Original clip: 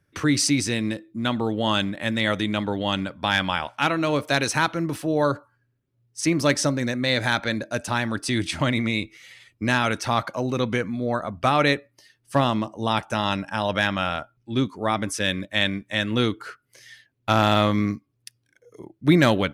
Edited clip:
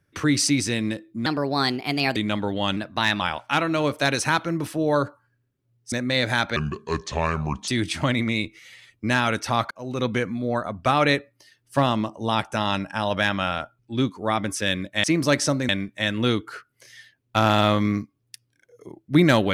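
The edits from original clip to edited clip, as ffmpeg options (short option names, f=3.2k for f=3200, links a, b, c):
-filter_complex "[0:a]asplit=11[a][b][c][d][e][f][g][h][i][j][k];[a]atrim=end=1.264[l];[b]atrim=start=1.26:end=2.41,asetpts=PTS-STARTPTS,asetrate=56007,aresample=44100,atrim=end_sample=39933,asetpts=PTS-STARTPTS[m];[c]atrim=start=2.406:end=3.014[n];[d]atrim=start=3.01:end=3.5,asetpts=PTS-STARTPTS,asetrate=48510,aresample=44100[o];[e]atrim=start=3.496:end=6.212[p];[f]atrim=start=6.858:end=7.504[q];[g]atrim=start=7.5:end=8.26,asetpts=PTS-STARTPTS,asetrate=29988,aresample=44100,atrim=end_sample=49288,asetpts=PTS-STARTPTS[r];[h]atrim=start=8.256:end=10.29,asetpts=PTS-STARTPTS,afade=t=out:st=2.03:d=0.004:c=hsin[s];[i]atrim=start=10.29:end=15.622,asetpts=PTS-STARTPTS,afade=t=in:d=0.34[t];[j]atrim=start=6.208:end=6.862[u];[k]atrim=start=15.618[v];[l][m]acrossfade=d=0.004:c1=hsin:c2=hsin[w];[w][n]acrossfade=d=0.004:c1=hsin:c2=hsin[x];[x][o]acrossfade=d=0.004:c1=hsin:c2=hsin[y];[y][p]acrossfade=d=0.004:c1=hsin:c2=hsin[z];[z][q]acrossfade=d=0.004:c1=hsin:c2=hsin[aa];[aa][r]acrossfade=d=0.004:c1=hsin:c2=hsin[ab];[s][t]concat=n=2:v=0:a=1[ac];[ab][ac]acrossfade=d=0.004:c1=hsin:c2=hsin[ad];[ad][u]acrossfade=d=0.004:c1=hsin:c2=hsin[ae];[ae][v]acrossfade=d=0.004:c1=hsin:c2=hsin"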